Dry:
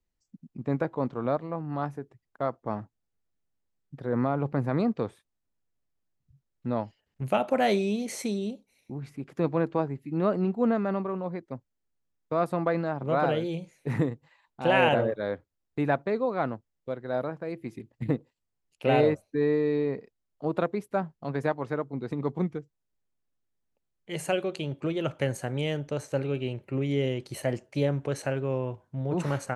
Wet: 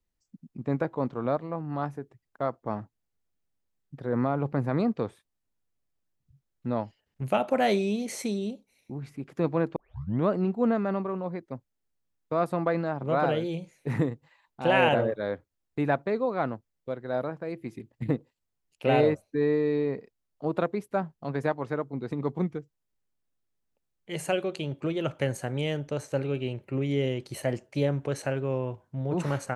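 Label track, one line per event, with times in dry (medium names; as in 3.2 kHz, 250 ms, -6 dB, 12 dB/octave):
9.760000	9.760000	tape start 0.53 s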